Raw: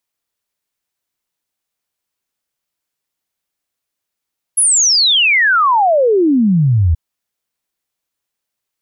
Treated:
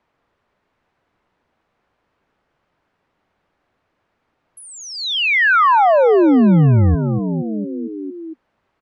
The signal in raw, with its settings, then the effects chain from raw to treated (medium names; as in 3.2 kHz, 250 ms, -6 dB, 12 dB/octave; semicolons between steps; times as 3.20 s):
log sweep 11 kHz -> 76 Hz 2.38 s -8.5 dBFS
low-pass 1.4 kHz 12 dB/octave; frequency-shifting echo 230 ms, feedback 54%, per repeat +40 Hz, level -12 dB; three bands compressed up and down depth 70%